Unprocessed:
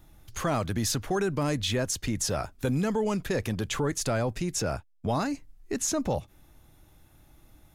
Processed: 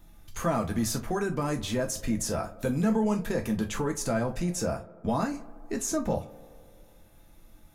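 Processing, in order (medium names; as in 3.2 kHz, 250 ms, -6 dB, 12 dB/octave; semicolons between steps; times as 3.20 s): dynamic bell 3.7 kHz, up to -8 dB, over -47 dBFS, Q 0.86; tape echo 81 ms, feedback 87%, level -18 dB, low-pass 1.9 kHz; gated-style reverb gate 80 ms falling, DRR 2.5 dB; trim -1.5 dB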